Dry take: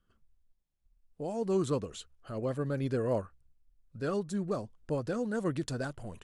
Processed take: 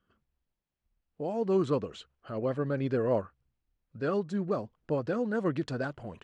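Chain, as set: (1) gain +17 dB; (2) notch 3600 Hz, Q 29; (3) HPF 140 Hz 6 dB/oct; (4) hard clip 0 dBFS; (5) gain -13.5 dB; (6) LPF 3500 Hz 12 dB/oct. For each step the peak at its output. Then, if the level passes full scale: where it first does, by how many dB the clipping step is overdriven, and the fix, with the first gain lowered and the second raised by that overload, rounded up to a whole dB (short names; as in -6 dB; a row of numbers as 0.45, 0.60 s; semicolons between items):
-2.5, -2.5, -2.5, -2.5, -16.0, -16.0 dBFS; no overload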